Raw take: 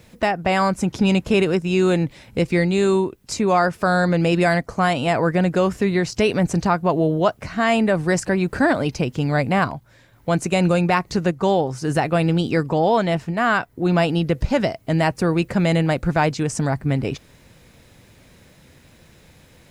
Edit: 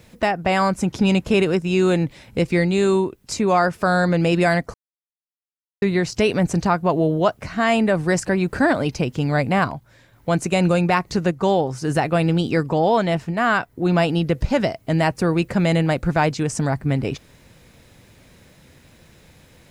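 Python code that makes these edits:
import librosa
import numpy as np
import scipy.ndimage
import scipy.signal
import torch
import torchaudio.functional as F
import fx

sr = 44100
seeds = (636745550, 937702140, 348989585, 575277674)

y = fx.edit(x, sr, fx.silence(start_s=4.74, length_s=1.08), tone=tone)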